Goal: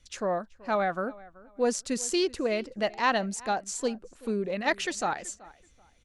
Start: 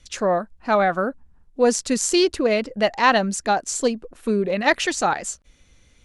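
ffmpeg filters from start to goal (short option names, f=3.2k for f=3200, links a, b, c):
-filter_complex "[0:a]asplit=2[a][b];[b]adelay=380,lowpass=f=3.2k:p=1,volume=-21dB,asplit=2[c][d];[d]adelay=380,lowpass=f=3.2k:p=1,volume=0.26[e];[a][c][e]amix=inputs=3:normalize=0,volume=-8.5dB"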